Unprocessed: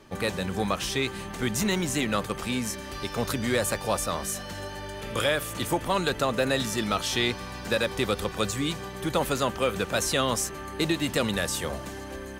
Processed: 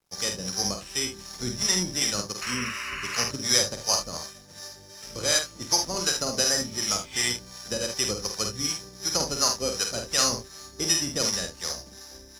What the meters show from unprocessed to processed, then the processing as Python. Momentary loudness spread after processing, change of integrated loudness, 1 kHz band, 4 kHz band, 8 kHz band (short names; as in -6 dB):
12 LU, +2.0 dB, -4.5 dB, +5.0 dB, +8.5 dB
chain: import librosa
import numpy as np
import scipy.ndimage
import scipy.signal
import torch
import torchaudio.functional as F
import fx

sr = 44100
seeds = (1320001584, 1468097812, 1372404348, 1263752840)

p1 = (np.kron(scipy.signal.resample_poly(x, 1, 8), np.eye(8)[0]) * 8)[:len(x)]
p2 = scipy.signal.sosfilt(scipy.signal.butter(4, 7800.0, 'lowpass', fs=sr, output='sos'), p1)
p3 = fx.spec_repair(p2, sr, seeds[0], start_s=6.52, length_s=0.68, low_hz=2000.0, high_hz=4500.0, source='both')
p4 = np.sign(p3) * np.maximum(np.abs(p3) - 10.0 ** (-43.0 / 20.0), 0.0)
p5 = fx.harmonic_tremolo(p4, sr, hz=2.7, depth_pct=70, crossover_hz=630.0)
p6 = fx.spec_paint(p5, sr, seeds[1], shape='noise', start_s=2.41, length_s=0.83, low_hz=980.0, high_hz=3000.0, level_db=-31.0)
p7 = fx.quant_dither(p6, sr, seeds[2], bits=10, dither='none')
p8 = p7 + fx.room_early_taps(p7, sr, ms=(49, 75), db=(-4.5, -8.5), dry=0)
y = fx.upward_expand(p8, sr, threshold_db=-42.0, expansion=1.5)